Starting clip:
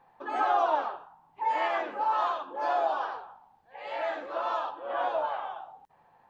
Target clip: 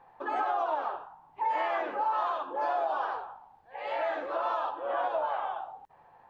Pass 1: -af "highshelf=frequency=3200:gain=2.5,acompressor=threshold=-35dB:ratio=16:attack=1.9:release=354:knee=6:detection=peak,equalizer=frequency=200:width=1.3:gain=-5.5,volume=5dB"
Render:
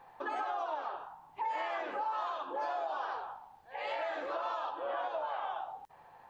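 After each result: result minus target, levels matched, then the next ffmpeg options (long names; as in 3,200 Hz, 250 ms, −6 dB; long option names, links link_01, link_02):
downward compressor: peak gain reduction +7 dB; 4,000 Hz band +5.5 dB
-af "highshelf=frequency=3200:gain=2.5,acompressor=threshold=-28dB:ratio=16:attack=1.9:release=354:knee=6:detection=peak,equalizer=frequency=200:width=1.3:gain=-5.5,volume=5dB"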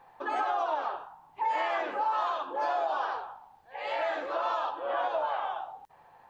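4,000 Hz band +4.5 dB
-af "highshelf=frequency=3200:gain=-8.5,acompressor=threshold=-28dB:ratio=16:attack=1.9:release=354:knee=6:detection=peak,equalizer=frequency=200:width=1.3:gain=-5.5,volume=5dB"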